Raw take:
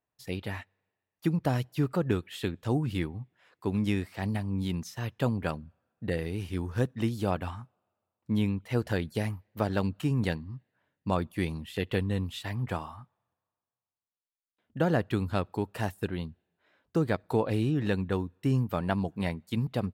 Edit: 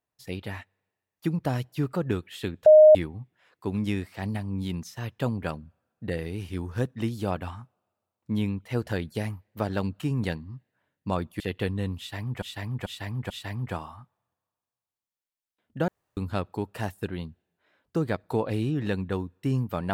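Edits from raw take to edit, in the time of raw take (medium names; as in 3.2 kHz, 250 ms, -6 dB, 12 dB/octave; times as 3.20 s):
2.66–2.95 s: bleep 617 Hz -9 dBFS
11.40–11.72 s: delete
12.30–12.74 s: loop, 4 plays
14.88–15.17 s: room tone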